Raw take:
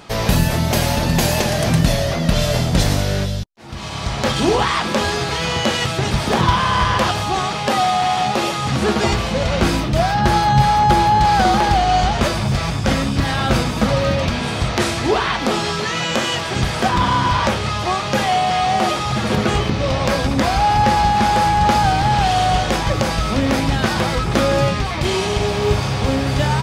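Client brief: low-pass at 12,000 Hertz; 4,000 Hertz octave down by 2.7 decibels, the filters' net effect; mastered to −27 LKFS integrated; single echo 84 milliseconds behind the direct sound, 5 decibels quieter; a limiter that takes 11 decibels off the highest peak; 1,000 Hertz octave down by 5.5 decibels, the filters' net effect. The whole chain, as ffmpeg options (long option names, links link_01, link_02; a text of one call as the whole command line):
ffmpeg -i in.wav -af "lowpass=12000,equalizer=frequency=1000:width_type=o:gain=-7.5,equalizer=frequency=4000:width_type=o:gain=-3,alimiter=limit=-13dB:level=0:latency=1,aecho=1:1:84:0.562,volume=-6dB" out.wav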